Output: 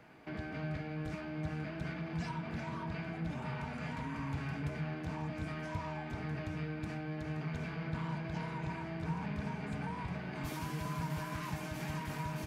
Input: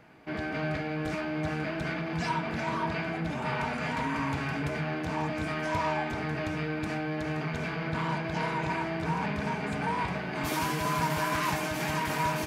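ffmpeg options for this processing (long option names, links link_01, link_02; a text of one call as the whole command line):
ffmpeg -i in.wav -filter_complex "[0:a]acrossover=split=200[link_01][link_02];[link_02]acompressor=threshold=-44dB:ratio=2.5[link_03];[link_01][link_03]amix=inputs=2:normalize=0,volume=-2.5dB" out.wav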